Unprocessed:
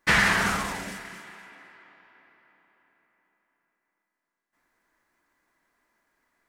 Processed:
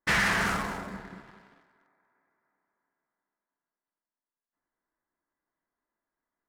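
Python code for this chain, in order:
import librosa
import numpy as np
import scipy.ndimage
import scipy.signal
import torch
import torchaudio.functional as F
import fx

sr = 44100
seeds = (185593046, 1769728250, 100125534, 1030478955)

y = fx.wiener(x, sr, points=15)
y = fx.low_shelf(y, sr, hz=300.0, db=8.0, at=(0.93, 1.61))
y = fx.leveller(y, sr, passes=2)
y = y + 10.0 ** (-12.5 / 20.0) * np.pad(y, (int(238 * sr / 1000.0), 0))[:len(y)]
y = y * librosa.db_to_amplitude(-9.0)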